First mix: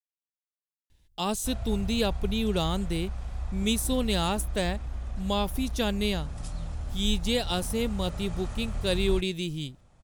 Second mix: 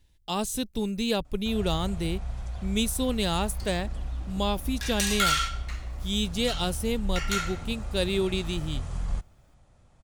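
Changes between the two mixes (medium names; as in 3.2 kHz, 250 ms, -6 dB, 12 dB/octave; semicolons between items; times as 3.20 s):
speech: entry -0.90 s; second sound: unmuted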